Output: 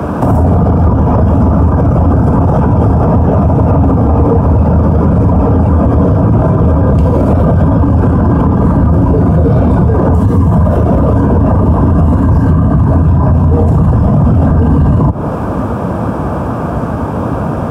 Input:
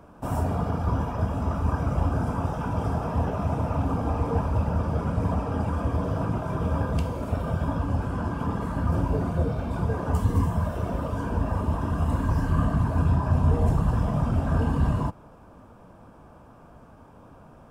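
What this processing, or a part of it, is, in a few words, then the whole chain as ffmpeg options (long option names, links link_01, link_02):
mastering chain: -filter_complex "[0:a]highpass=frequency=59:width=0.5412,highpass=frequency=59:width=1.3066,equalizer=frequency=1300:width_type=o:width=0.66:gain=2.5,acrossover=split=100|950[link_01][link_02][link_03];[link_01]acompressor=threshold=-34dB:ratio=4[link_04];[link_02]acompressor=threshold=-30dB:ratio=4[link_05];[link_03]acompressor=threshold=-49dB:ratio=4[link_06];[link_04][link_05][link_06]amix=inputs=3:normalize=0,acompressor=threshold=-33dB:ratio=6,asoftclip=type=tanh:threshold=-26dB,tiltshelf=frequency=970:gain=5,alimiter=level_in=32.5dB:limit=-1dB:release=50:level=0:latency=1,volume=-1dB"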